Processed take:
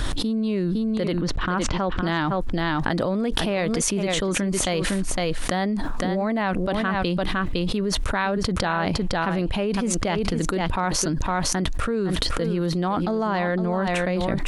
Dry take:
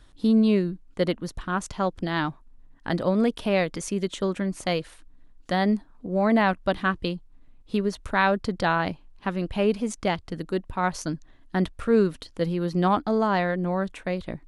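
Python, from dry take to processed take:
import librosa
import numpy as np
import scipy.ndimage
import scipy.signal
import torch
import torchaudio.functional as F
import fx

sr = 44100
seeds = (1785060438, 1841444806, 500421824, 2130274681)

p1 = fx.lowpass(x, sr, hz=3600.0, slope=12, at=(1.13, 2.01))
p2 = p1 + fx.echo_single(p1, sr, ms=509, db=-12.5, dry=0)
p3 = fx.env_flatten(p2, sr, amount_pct=100)
y = p3 * 10.0 ** (-6.5 / 20.0)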